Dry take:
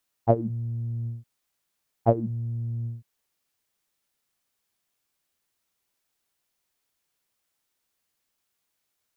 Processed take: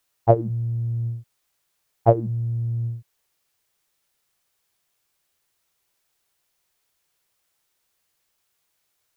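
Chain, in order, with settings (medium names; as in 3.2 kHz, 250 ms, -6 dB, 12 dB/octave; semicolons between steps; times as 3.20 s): peaking EQ 240 Hz -11.5 dB 0.32 oct; trim +5.5 dB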